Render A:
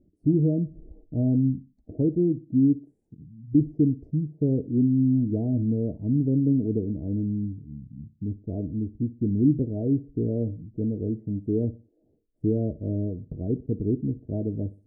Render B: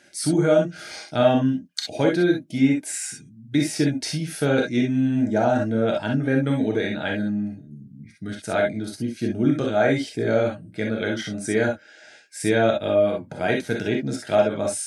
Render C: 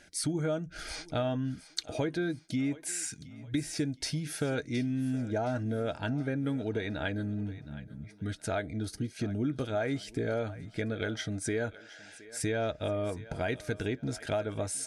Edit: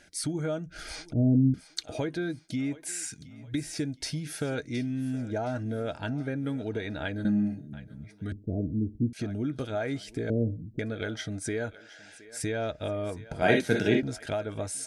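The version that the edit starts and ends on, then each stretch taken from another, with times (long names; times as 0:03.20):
C
0:01.13–0:01.54: punch in from A
0:07.25–0:07.73: punch in from B
0:08.32–0:09.13: punch in from A
0:10.30–0:10.79: punch in from A
0:13.42–0:14.03: punch in from B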